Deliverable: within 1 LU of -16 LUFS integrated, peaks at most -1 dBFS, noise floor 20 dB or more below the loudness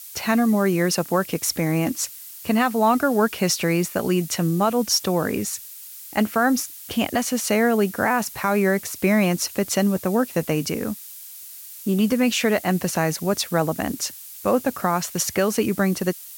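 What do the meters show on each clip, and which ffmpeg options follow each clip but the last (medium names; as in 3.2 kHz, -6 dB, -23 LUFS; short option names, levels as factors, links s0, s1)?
noise floor -40 dBFS; noise floor target -42 dBFS; loudness -22.0 LUFS; peak level -8.0 dBFS; loudness target -16.0 LUFS
-> -af "afftdn=nr=6:nf=-40"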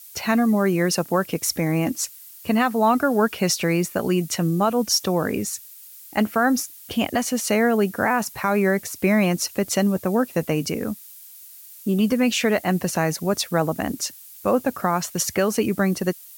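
noise floor -44 dBFS; loudness -22.0 LUFS; peak level -8.5 dBFS; loudness target -16.0 LUFS
-> -af "volume=2"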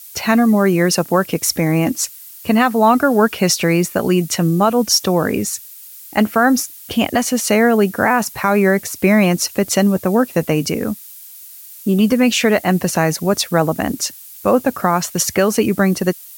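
loudness -16.0 LUFS; peak level -2.0 dBFS; noise floor -38 dBFS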